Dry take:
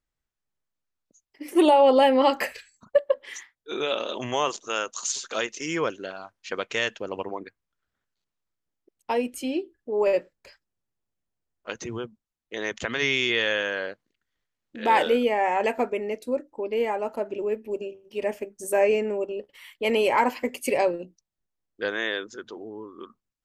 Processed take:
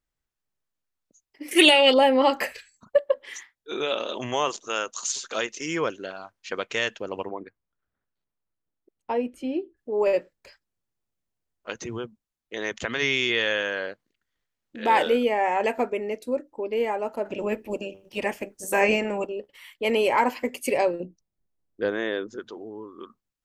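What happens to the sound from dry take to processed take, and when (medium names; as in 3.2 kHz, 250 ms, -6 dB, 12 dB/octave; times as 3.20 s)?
1.51–1.94 s: resonant high shelf 1.5 kHz +12.5 dB, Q 3
7.29–9.77 s: low-pass 1.3 kHz 6 dB/octave
17.24–19.26 s: spectral peaks clipped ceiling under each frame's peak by 15 dB
21.00–22.40 s: tilt shelf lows +7 dB, about 910 Hz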